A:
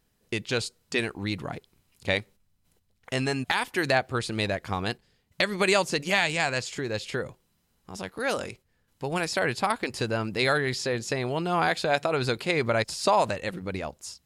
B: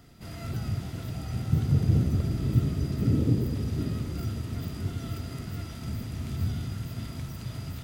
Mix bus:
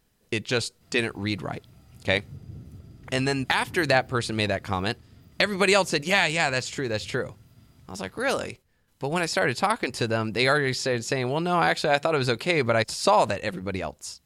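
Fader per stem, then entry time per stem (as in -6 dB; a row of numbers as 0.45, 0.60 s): +2.5, -19.0 dB; 0.00, 0.60 s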